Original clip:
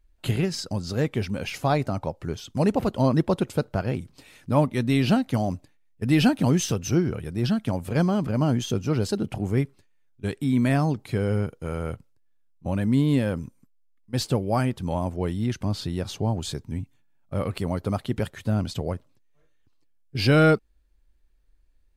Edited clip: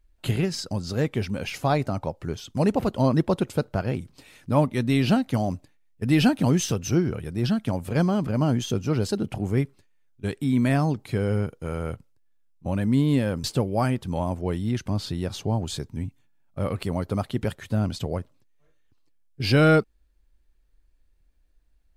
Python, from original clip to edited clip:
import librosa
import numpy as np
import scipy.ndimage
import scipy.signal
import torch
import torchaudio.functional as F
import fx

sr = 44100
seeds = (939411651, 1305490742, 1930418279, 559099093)

y = fx.edit(x, sr, fx.cut(start_s=13.44, length_s=0.75), tone=tone)